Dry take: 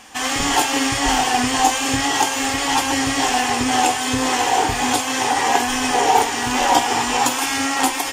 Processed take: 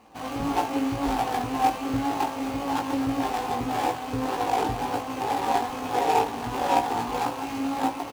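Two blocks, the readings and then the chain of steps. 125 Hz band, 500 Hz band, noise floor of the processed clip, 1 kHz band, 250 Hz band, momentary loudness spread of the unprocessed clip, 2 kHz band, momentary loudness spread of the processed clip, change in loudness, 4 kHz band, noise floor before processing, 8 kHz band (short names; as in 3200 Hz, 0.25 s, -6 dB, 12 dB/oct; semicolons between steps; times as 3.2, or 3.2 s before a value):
-3.5 dB, -5.0 dB, -35 dBFS, -7.0 dB, -5.0 dB, 3 LU, -15.0 dB, 5 LU, -9.0 dB, -17.0 dB, -24 dBFS, -21.0 dB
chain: median filter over 25 samples; HPF 46 Hz; doubler 18 ms -3 dB; gain -6 dB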